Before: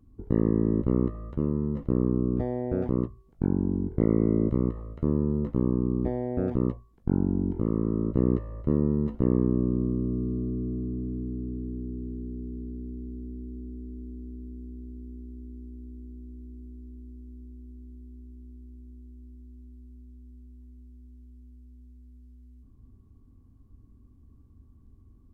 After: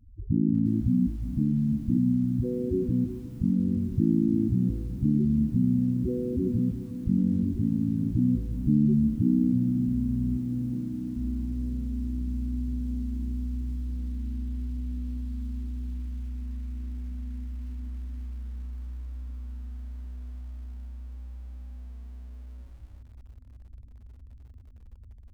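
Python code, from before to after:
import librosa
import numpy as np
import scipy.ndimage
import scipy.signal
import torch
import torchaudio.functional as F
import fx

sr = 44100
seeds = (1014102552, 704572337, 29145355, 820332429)

y = fx.hum_notches(x, sr, base_hz=60, count=6, at=(10.37, 11.16), fade=0.02)
y = fx.spec_topn(y, sr, count=4)
y = fx.dynamic_eq(y, sr, hz=1100.0, q=1.5, threshold_db=-58.0, ratio=4.0, max_db=-6)
y = fx.echo_diffused(y, sr, ms=1118, feedback_pct=72, wet_db=-16.0)
y = fx.echo_crushed(y, sr, ms=357, feedback_pct=35, bits=9, wet_db=-13)
y = y * 10.0 ** (5.5 / 20.0)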